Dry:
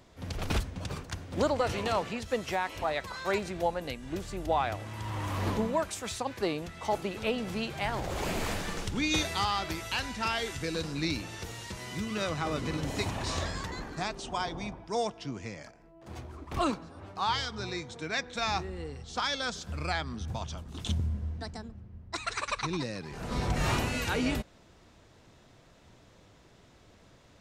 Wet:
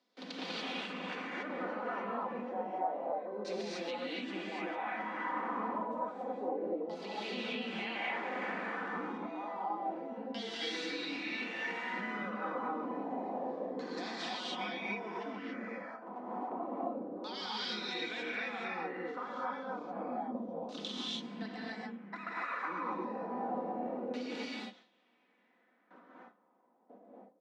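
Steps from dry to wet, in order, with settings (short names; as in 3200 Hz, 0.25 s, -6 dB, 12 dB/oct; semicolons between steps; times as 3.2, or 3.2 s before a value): gate with hold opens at -46 dBFS; steep high-pass 190 Hz 72 dB/oct; comb 4 ms, depth 46%; limiter -26.5 dBFS, peak gain reduction 11.5 dB; compressor 5:1, threshold -45 dBFS, peak gain reduction 13 dB; LFO low-pass saw down 0.29 Hz 430–4900 Hz; non-linear reverb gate 0.31 s rising, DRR -6.5 dB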